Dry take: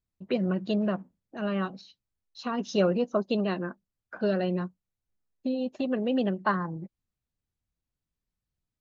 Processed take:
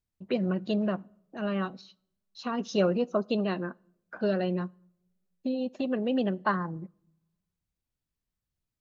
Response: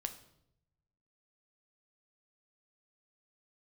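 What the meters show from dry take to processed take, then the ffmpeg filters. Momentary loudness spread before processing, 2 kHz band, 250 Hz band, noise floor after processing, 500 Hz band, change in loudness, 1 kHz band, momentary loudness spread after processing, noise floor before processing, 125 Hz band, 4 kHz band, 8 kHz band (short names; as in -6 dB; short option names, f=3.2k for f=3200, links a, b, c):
13 LU, -1.0 dB, -1.0 dB, under -85 dBFS, -1.0 dB, -1.0 dB, -1.0 dB, 12 LU, under -85 dBFS, -1.0 dB, -1.0 dB, n/a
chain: -filter_complex "[0:a]asplit=2[a][b];[1:a]atrim=start_sample=2205[c];[b][c]afir=irnorm=-1:irlink=0,volume=-15dB[d];[a][d]amix=inputs=2:normalize=0,volume=-2dB"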